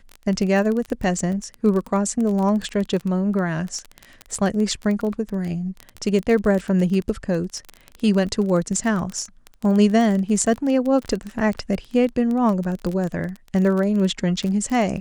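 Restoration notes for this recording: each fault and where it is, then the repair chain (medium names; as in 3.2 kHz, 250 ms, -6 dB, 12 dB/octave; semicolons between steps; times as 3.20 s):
crackle 22 per s -24 dBFS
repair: de-click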